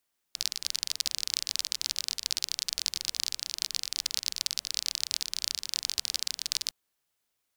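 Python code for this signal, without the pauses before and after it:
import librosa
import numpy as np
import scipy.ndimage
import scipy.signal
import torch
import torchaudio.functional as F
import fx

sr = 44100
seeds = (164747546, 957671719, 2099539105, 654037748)

y = fx.rain(sr, seeds[0], length_s=6.36, drops_per_s=32.0, hz=4700.0, bed_db=-26.0)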